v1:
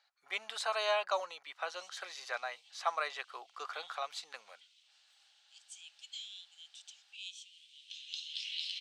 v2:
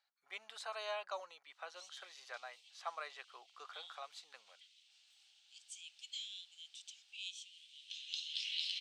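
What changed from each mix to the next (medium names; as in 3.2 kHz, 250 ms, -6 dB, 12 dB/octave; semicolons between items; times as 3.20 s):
speech -10.0 dB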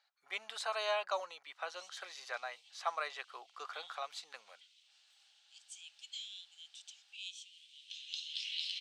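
speech +7.0 dB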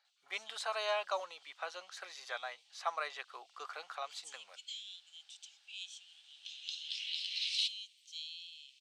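background: entry -1.45 s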